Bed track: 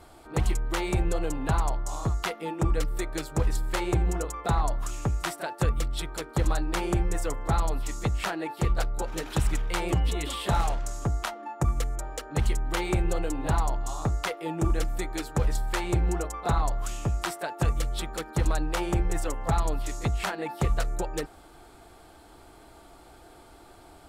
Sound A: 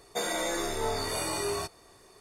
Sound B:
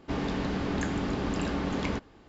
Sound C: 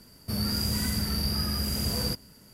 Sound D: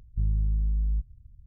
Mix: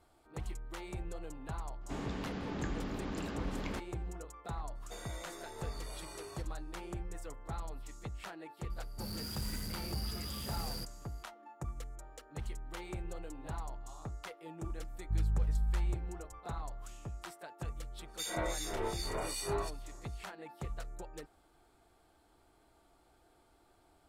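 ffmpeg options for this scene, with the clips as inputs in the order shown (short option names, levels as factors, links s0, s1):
-filter_complex "[1:a]asplit=2[s0][s1];[0:a]volume=0.158[s2];[2:a]acontrast=37[s3];[3:a]asoftclip=type=hard:threshold=0.0376[s4];[s1]acrossover=split=2300[s5][s6];[s5]aeval=exprs='val(0)*(1-1/2+1/2*cos(2*PI*2.6*n/s))':c=same[s7];[s6]aeval=exprs='val(0)*(1-1/2-1/2*cos(2*PI*2.6*n/s))':c=same[s8];[s7][s8]amix=inputs=2:normalize=0[s9];[s3]atrim=end=2.28,asetpts=PTS-STARTPTS,volume=0.178,afade=t=in:d=0.004:c=hsin,afade=t=out:st=2.276:d=0.004:c=hsin,adelay=1810[s10];[s0]atrim=end=2.2,asetpts=PTS-STARTPTS,volume=0.141,afade=t=in:d=0.004:c=hsin,afade=t=out:st=2.196:d=0.004:c=hsin,adelay=4750[s11];[s4]atrim=end=2.53,asetpts=PTS-STARTPTS,volume=0.299,afade=t=in:d=0.004:c=hsin,afade=t=out:st=2.526:d=0.004:c=hsin,adelay=8700[s12];[4:a]atrim=end=1.46,asetpts=PTS-STARTPTS,volume=0.501,afade=t=in:d=0.004:c=hsin,afade=t=out:st=1.456:d=0.004:c=hsin,adelay=14930[s13];[s9]atrim=end=2.2,asetpts=PTS-STARTPTS,volume=0.75,afade=t=in:d=0.004:c=hsin,afade=t=out:st=2.196:d=0.004:c=hsin,adelay=18030[s14];[s2][s10][s11][s12][s13][s14]amix=inputs=6:normalize=0"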